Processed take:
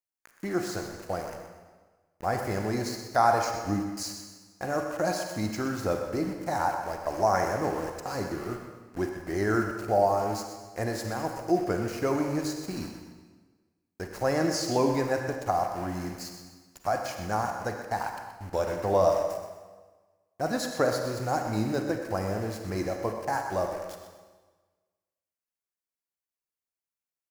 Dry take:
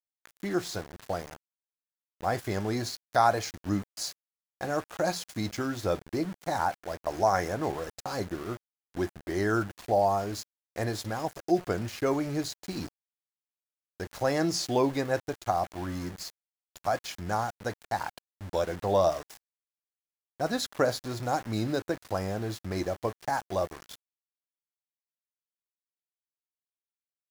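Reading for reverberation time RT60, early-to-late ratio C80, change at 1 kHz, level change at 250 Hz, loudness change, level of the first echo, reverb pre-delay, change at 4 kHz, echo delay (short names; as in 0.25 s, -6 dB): 1.4 s, 5.0 dB, +1.5 dB, +1.5 dB, +1.5 dB, -10.5 dB, 36 ms, -1.5 dB, 0.125 s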